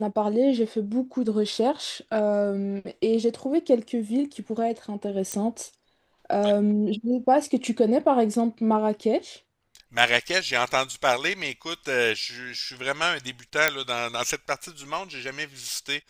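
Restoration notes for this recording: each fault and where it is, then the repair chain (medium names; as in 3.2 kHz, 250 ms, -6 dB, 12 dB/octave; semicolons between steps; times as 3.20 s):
5.32 s: pop -14 dBFS
13.68 s: pop -4 dBFS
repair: de-click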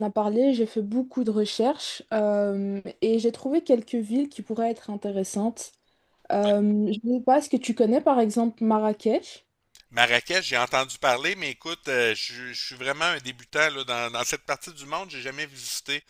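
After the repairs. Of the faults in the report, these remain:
nothing left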